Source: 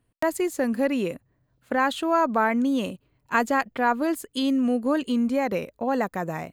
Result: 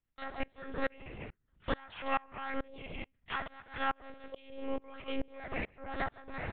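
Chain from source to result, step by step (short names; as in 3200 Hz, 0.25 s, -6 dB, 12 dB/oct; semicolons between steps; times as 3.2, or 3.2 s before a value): bell 530 Hz -15 dB 2.8 oct; echo 0.148 s -14 dB; harmoniser -5 st -16 dB, -4 st -2 dB, +12 st -6 dB; HPF 43 Hz 24 dB/oct; bell 230 Hz -10.5 dB 0.95 oct; on a send at -16 dB: reverb, pre-delay 45 ms; on the sum: compressor 10:1, threshold -40 dBFS, peak gain reduction 18 dB; LPF 2700 Hz 12 dB/oct; monotone LPC vocoder at 8 kHz 270 Hz; dB-ramp tremolo swelling 2.3 Hz, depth 29 dB; gain +15 dB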